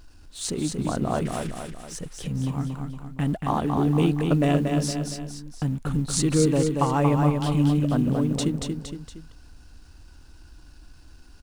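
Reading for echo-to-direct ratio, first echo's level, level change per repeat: −3.5 dB, −4.5 dB, −6.0 dB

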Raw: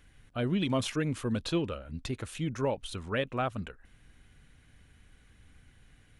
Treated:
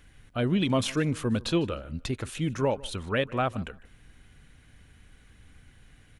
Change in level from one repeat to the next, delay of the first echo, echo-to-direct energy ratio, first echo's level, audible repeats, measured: −12.5 dB, 152 ms, −22.0 dB, −22.0 dB, 2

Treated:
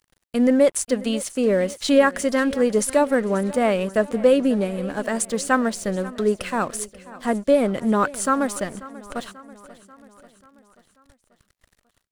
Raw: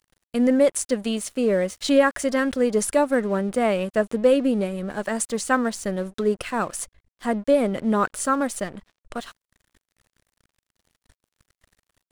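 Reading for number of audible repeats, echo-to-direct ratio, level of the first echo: 4, −17.0 dB, −18.5 dB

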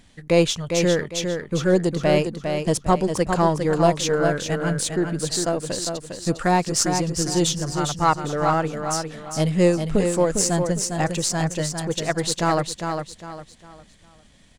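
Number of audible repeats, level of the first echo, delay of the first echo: 4, −6.0 dB, 404 ms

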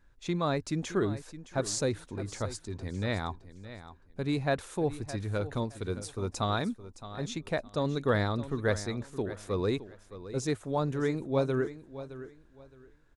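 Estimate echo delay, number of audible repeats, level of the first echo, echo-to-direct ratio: 616 ms, 2, −14.0 dB, −13.5 dB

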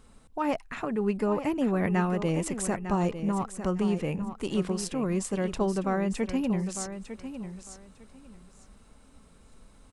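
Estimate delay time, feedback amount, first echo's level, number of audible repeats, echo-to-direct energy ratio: 902 ms, 20%, −10.5 dB, 2, −10.5 dB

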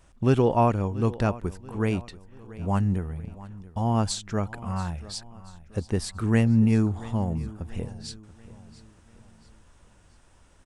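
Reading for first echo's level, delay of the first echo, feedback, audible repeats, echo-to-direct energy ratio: −18.0 dB, 684 ms, 43%, 3, −17.0 dB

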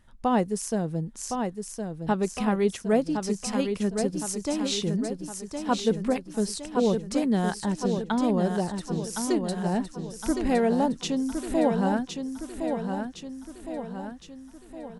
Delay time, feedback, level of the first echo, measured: 1,063 ms, 52%, −6.0 dB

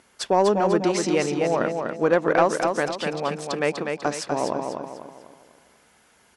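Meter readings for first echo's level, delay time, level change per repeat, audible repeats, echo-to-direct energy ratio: −5.0 dB, 247 ms, −8.0 dB, 4, −4.0 dB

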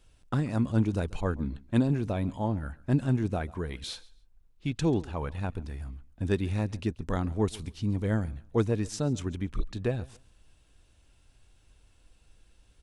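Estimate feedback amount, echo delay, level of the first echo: 23%, 137 ms, −22.0 dB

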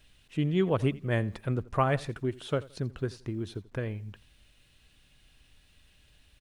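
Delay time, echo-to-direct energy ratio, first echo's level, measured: 85 ms, −20.0 dB, −20.5 dB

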